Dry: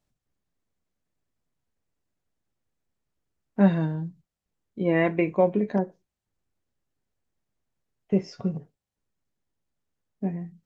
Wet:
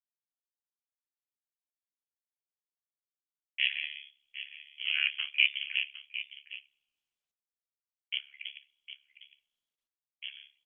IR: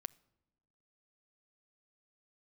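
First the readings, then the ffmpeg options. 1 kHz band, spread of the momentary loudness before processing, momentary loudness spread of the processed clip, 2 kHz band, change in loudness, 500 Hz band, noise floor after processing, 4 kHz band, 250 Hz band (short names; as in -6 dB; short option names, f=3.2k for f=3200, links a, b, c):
under -25 dB, 13 LU, 20 LU, +5.0 dB, -5.5 dB, under -40 dB, under -85 dBFS, n/a, under -40 dB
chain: -filter_complex "[0:a]aeval=exprs='if(lt(val(0),0),0.251*val(0),val(0))':c=same,aemphasis=mode=reproduction:type=riaa,agate=range=-57dB:threshold=-41dB:ratio=16:detection=peak,asuperpass=centerf=2400:order=4:qfactor=0.61,asoftclip=type=tanh:threshold=-23.5dB,highshelf=f=1.7k:t=q:w=3:g=-11.5,asplit=2[a][b];[b]adelay=758,volume=-12dB,highshelf=f=4k:g=-17.1[c];[a][c]amix=inputs=2:normalize=0,asplit=2[d][e];[1:a]atrim=start_sample=2205,lowpass=2.2k[f];[e][f]afir=irnorm=-1:irlink=0,volume=9dB[g];[d][g]amix=inputs=2:normalize=0,lowpass=f=3k:t=q:w=0.5098,lowpass=f=3k:t=q:w=0.6013,lowpass=f=3k:t=q:w=0.9,lowpass=f=3k:t=q:w=2.563,afreqshift=-3500,tremolo=f=70:d=0.974,volume=2.5dB" -ar 48000 -c:a libopus -b:a 48k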